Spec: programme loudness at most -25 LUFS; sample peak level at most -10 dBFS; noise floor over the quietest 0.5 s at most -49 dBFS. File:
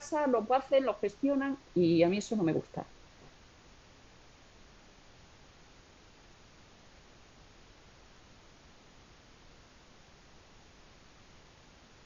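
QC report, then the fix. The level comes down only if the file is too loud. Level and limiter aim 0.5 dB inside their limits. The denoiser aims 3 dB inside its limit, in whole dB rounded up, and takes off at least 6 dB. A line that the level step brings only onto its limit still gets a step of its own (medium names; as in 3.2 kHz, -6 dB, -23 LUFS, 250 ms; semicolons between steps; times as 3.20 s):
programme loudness -30.5 LUFS: pass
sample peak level -13.5 dBFS: pass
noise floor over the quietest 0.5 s -58 dBFS: pass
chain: none needed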